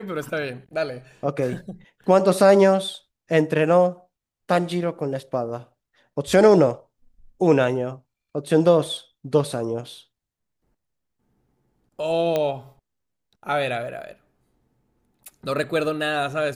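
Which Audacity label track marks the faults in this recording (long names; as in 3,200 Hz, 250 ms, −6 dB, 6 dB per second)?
12.360000	12.360000	click −11 dBFS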